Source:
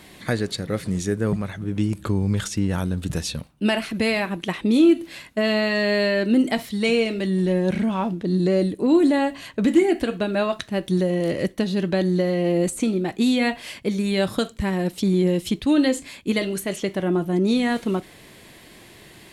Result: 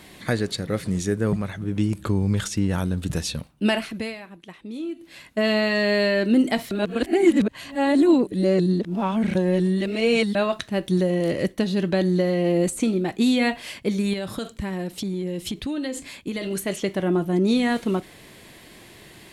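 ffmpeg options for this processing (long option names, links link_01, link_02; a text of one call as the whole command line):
ffmpeg -i in.wav -filter_complex "[0:a]asettb=1/sr,asplit=3[link_01][link_02][link_03];[link_01]atrim=end=14.134[link_04];[link_02]atrim=start=14.13:end=16.51,asetpts=PTS-STARTPTS,afade=type=in:duration=0.004:curve=qsin,afade=type=out:start_time=2.376:duration=0.004:curve=qsin,acompressor=threshold=-24dB:ratio=10:attack=3.2:release=140:knee=1:detection=peak[link_05];[link_03]atrim=start=16.506[link_06];[link_04][link_05]acrossfade=duration=0.004:curve1=hsin:curve2=qsin[link_07];[link_07][link_06]acrossfade=duration=0.004:curve1=qsin:curve2=hsin,asplit=5[link_08][link_09][link_10][link_11][link_12];[link_08]atrim=end=4.17,asetpts=PTS-STARTPTS,afade=type=out:start_time=3.71:duration=0.46:silence=0.158489[link_13];[link_09]atrim=start=4.17:end=4.96,asetpts=PTS-STARTPTS,volume=-16dB[link_14];[link_10]atrim=start=4.96:end=6.712,asetpts=PTS-STARTPTS,afade=type=in:duration=0.46:silence=0.158489[link_15];[link_11]atrim=start=6.708:end=10.352,asetpts=PTS-STARTPTS,areverse[link_16];[link_12]atrim=start=10.348[link_17];[link_13][link_14][link_15]concat=n=3:v=0:a=1[link_18];[link_18][link_16]acrossfade=duration=0.004:curve1=hsin:curve2=hsin[link_19];[link_19][link_17]acrossfade=duration=0.004:curve1=hsin:curve2=hsin" out.wav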